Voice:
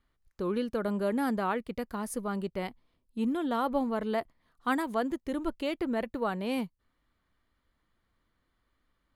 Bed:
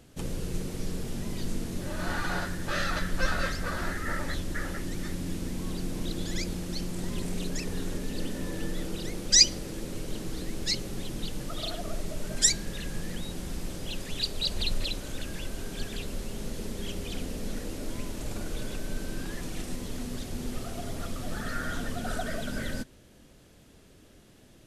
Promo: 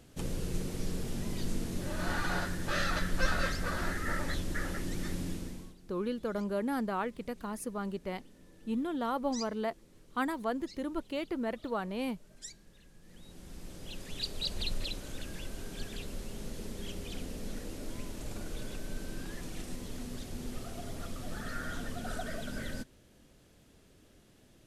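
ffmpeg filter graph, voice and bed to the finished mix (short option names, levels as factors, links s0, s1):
-filter_complex "[0:a]adelay=5500,volume=0.668[s0];[1:a]volume=6.68,afade=t=out:st=5.2:d=0.55:silence=0.0794328,afade=t=in:st=13.01:d=1.34:silence=0.11885[s1];[s0][s1]amix=inputs=2:normalize=0"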